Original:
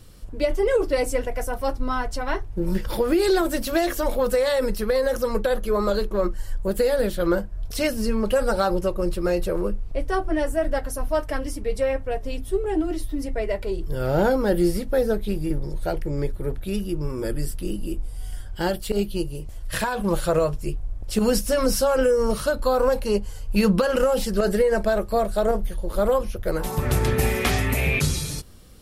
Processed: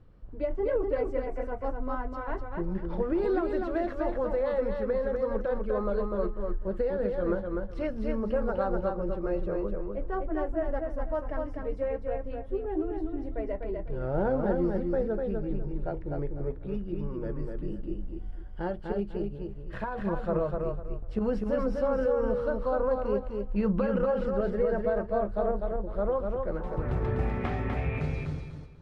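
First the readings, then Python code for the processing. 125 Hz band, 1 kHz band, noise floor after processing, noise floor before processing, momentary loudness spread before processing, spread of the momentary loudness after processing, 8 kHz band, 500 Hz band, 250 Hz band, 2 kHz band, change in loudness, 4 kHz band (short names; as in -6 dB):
-6.5 dB, -7.5 dB, -39 dBFS, -35 dBFS, 9 LU, 8 LU, under -35 dB, -6.5 dB, -6.5 dB, -12.0 dB, -7.0 dB, under -20 dB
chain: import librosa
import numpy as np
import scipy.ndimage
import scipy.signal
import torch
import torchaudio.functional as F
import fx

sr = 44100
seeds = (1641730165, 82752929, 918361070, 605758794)

y = scipy.signal.sosfilt(scipy.signal.butter(2, 1400.0, 'lowpass', fs=sr, output='sos'), x)
y = fx.echo_feedback(y, sr, ms=249, feedback_pct=25, wet_db=-4.0)
y = y * 10.0 ** (-8.0 / 20.0)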